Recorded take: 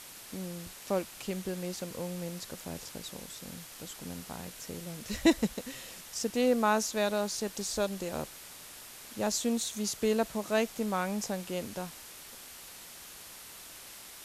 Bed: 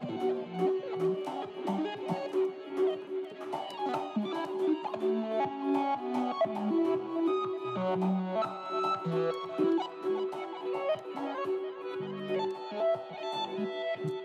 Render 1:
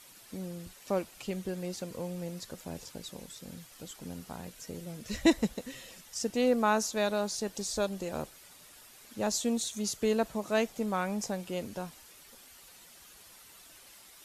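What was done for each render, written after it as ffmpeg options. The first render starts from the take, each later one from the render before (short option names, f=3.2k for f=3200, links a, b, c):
-af "afftdn=nr=9:nf=-49"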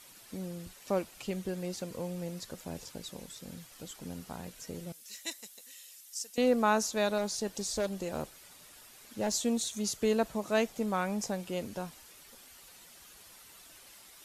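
-filter_complex "[0:a]asettb=1/sr,asplit=3[a][b][c];[a]atrim=end=4.924[d];[b]atrim=start=4.92:end=6.38,asetpts=PTS-STARTPTS,afade=t=in:d=0.004:c=qsin,afade=t=out:st=1.456:d=0.004:c=qsin,aderivative[e];[c]atrim=start=6.376[f];[d][e]acrossfade=d=0.004:c1=hsin:c2=qsin[g];[g][f]acrossfade=d=0.004:c1=qsin:c2=hsin,asettb=1/sr,asplit=3[h][i][j];[h]atrim=end=7.184[k];[i]atrim=start=7.18:end=9.34,asetpts=PTS-STARTPTS,afade=t=in:d=0.004:c=qsin,afade=t=out:st=2.156:d=0.004:c=qsin,asoftclip=type=hard:threshold=-25.5dB[l];[j]atrim=start=9.336[m];[k][l]acrossfade=d=0.004:c1=hsin:c2=qsin[n];[n][m]acrossfade=d=0.004:c1=qsin:c2=hsin"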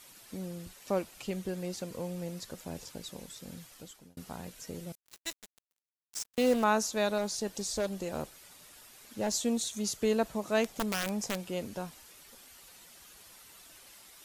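-filter_complex "[0:a]asettb=1/sr,asplit=3[a][b][c];[a]atrim=end=4.954[d];[b]atrim=start=4.95:end=6.64,asetpts=PTS-STARTPTS,afade=t=in:d=0.004:c=qsin,afade=t=out:st=1.686:d=0.004:c=qsin,acrusher=bits=5:mix=0:aa=0.5[e];[c]atrim=start=6.636[f];[d][e]acrossfade=d=0.004:c1=hsin:c2=qsin[g];[g][f]acrossfade=d=0.004:c1=qsin:c2=hsin,asettb=1/sr,asplit=3[h][i][j];[h]atrim=end=10.644[k];[i]atrim=start=10.64:end=11.36,asetpts=PTS-STARTPTS,afade=t=in:d=0.004:c=qsin,afade=t=out:st=0.716:d=0.004:c=qsin,aeval=exprs='(mod(16.8*val(0)+1,2)-1)/16.8':c=same[l];[j]atrim=start=11.356[m];[k][l]acrossfade=d=0.004:c1=hsin:c2=qsin[n];[n][m]acrossfade=d=0.004:c1=qsin:c2=hsin,asplit=2[o][p];[o]atrim=end=4.17,asetpts=PTS-STARTPTS,afade=t=out:st=3.69:d=0.48[q];[p]atrim=start=4.17,asetpts=PTS-STARTPTS,afade=t=in:d=0.004:c=hsin[r];[q][r]concat=n=2:v=0:a=1"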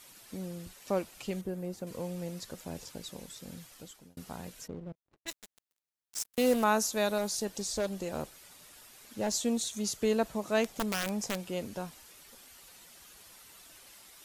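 -filter_complex "[0:a]asettb=1/sr,asplit=3[a][b][c];[a]atrim=end=1.414[d];[b]atrim=start=1.41:end=1.87,asetpts=PTS-STARTPTS,afade=t=in:d=0.004:c=qsin,afade=t=out:st=0.456:d=0.004:c=qsin,equalizer=f=4.5k:t=o:w=2.9:g=-11.5[e];[c]atrim=start=1.866[f];[d][e]acrossfade=d=0.004:c1=hsin:c2=qsin[g];[g][f]acrossfade=d=0.004:c1=qsin:c2=hsin,asplit=3[h][i][j];[h]afade=t=out:st=4.66:d=0.02[k];[i]adynamicsmooth=sensitivity=7:basefreq=610,afade=t=in:st=4.66:d=0.02,afade=t=out:st=5.27:d=0.02[l];[j]afade=t=in:st=5.27:d=0.02[m];[k][l][m]amix=inputs=3:normalize=0,asettb=1/sr,asplit=3[n][o][p];[n]atrim=end=6.184[q];[o]atrim=start=6.18:end=7.45,asetpts=PTS-STARTPTS,afade=t=in:d=0.004:c=qsin,afade=t=out:st=1.266:d=0.004:c=qsin,equalizer=f=12k:t=o:w=0.84:g=7.5[r];[p]atrim=start=7.446[s];[q][r]acrossfade=d=0.004:c1=hsin:c2=qsin[t];[t][s]acrossfade=d=0.004:c1=qsin:c2=hsin"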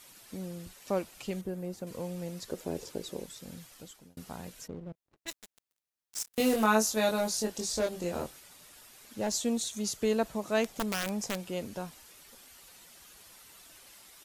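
-filter_complex "[0:a]asettb=1/sr,asplit=3[a][b][c];[a]atrim=end=2.484[d];[b]atrim=start=2.48:end=3.24,asetpts=PTS-STARTPTS,afade=t=in:d=0.004:c=qsin,afade=t=out:st=0.756:d=0.004:c=qsin,equalizer=f=400:w=1.5:g=12.5[e];[c]atrim=start=3.236[f];[d][e]acrossfade=d=0.004:c1=hsin:c2=qsin[g];[g][f]acrossfade=d=0.004:c1=qsin:c2=hsin,asplit=3[h][i][j];[h]afade=t=out:st=6.24:d=0.02[k];[i]asplit=2[l][m];[m]adelay=23,volume=-2.5dB[n];[l][n]amix=inputs=2:normalize=0,afade=t=in:st=6.24:d=0.02,afade=t=out:st=8.39:d=0.02[o];[j]afade=t=in:st=8.39:d=0.02[p];[k][o][p]amix=inputs=3:normalize=0"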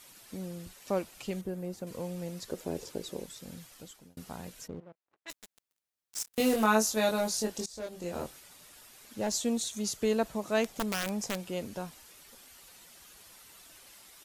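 -filter_complex "[0:a]asettb=1/sr,asplit=3[a][b][c];[a]atrim=end=4.804[d];[b]atrim=start=4.8:end=5.3,asetpts=PTS-STARTPTS,afade=t=in:d=0.004:c=qsin,afade=t=out:st=0.496:d=0.004:c=qsin,bandpass=f=1.2k:t=q:w=0.68[e];[c]atrim=start=5.296[f];[d][e]acrossfade=d=0.004:c1=hsin:c2=qsin[g];[g][f]acrossfade=d=0.004:c1=qsin:c2=hsin,asplit=2[h][i];[h]atrim=end=7.66,asetpts=PTS-STARTPTS,afade=t=out:st=7.656:d=0.004:c=hsin:silence=0.112202[j];[i]atrim=start=7.66,asetpts=PTS-STARTPTS,afade=t=in:d=0.65:silence=0.112202[k];[j][k]concat=n=2:v=0:a=1"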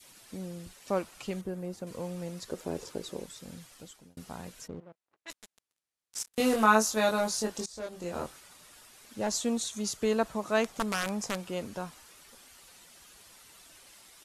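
-af "lowpass=f=12k:w=0.5412,lowpass=f=12k:w=1.3066,adynamicequalizer=threshold=0.00398:dfrequency=1200:dqfactor=1.5:tfrequency=1200:tqfactor=1.5:attack=5:release=100:ratio=0.375:range=3:mode=boostabove:tftype=bell"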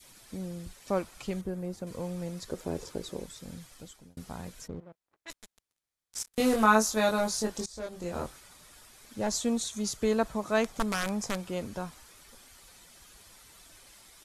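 -af "lowshelf=f=92:g=11,bandreject=f=2.8k:w=18"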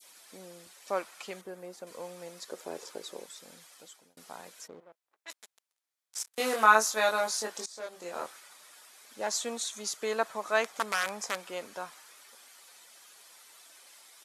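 -af "highpass=520,adynamicequalizer=threshold=0.00708:dfrequency=1700:dqfactor=0.88:tfrequency=1700:tqfactor=0.88:attack=5:release=100:ratio=0.375:range=2:mode=boostabove:tftype=bell"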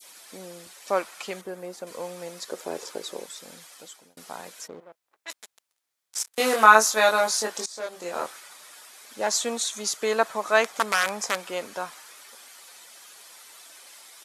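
-af "volume=7dB,alimiter=limit=-1dB:level=0:latency=1"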